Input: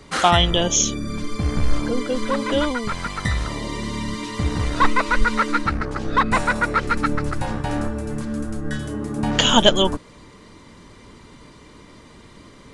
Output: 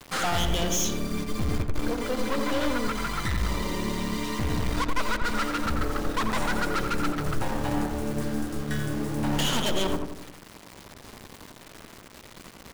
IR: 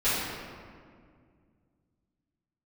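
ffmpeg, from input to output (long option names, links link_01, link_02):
-filter_complex "[0:a]aeval=exprs='(tanh(17.8*val(0)+0.5)-tanh(0.5))/17.8':channel_layout=same,acrusher=bits=6:mix=0:aa=0.000001,asplit=2[link_01][link_02];[link_02]adelay=88,lowpass=frequency=1600:poles=1,volume=-4dB,asplit=2[link_03][link_04];[link_04]adelay=88,lowpass=frequency=1600:poles=1,volume=0.52,asplit=2[link_05][link_06];[link_06]adelay=88,lowpass=frequency=1600:poles=1,volume=0.52,asplit=2[link_07][link_08];[link_08]adelay=88,lowpass=frequency=1600:poles=1,volume=0.52,asplit=2[link_09][link_10];[link_10]adelay=88,lowpass=frequency=1600:poles=1,volume=0.52,asplit=2[link_11][link_12];[link_12]adelay=88,lowpass=frequency=1600:poles=1,volume=0.52,asplit=2[link_13][link_14];[link_14]adelay=88,lowpass=frequency=1600:poles=1,volume=0.52[link_15];[link_01][link_03][link_05][link_07][link_09][link_11][link_13][link_15]amix=inputs=8:normalize=0"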